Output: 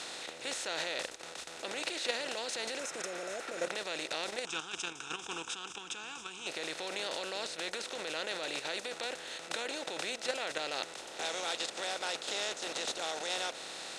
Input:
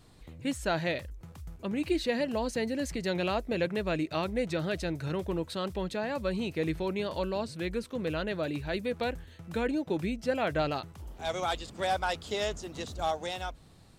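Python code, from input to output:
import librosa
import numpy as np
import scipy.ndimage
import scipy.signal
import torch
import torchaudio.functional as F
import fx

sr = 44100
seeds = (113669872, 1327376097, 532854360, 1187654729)

y = fx.bin_compress(x, sr, power=0.4)
y = fx.dynamic_eq(y, sr, hz=490.0, q=1.4, threshold_db=-38.0, ratio=4.0, max_db=6)
y = fx.spec_repair(y, sr, seeds[0], start_s=2.81, length_s=0.84, low_hz=750.0, high_hz=5100.0, source='after')
y = fx.fixed_phaser(y, sr, hz=2900.0, stages=8, at=(4.45, 6.47))
y = fx.level_steps(y, sr, step_db=9)
y = fx.weighting(y, sr, curve='ITU-R 468')
y = y * 10.0 ** (-8.0 / 20.0)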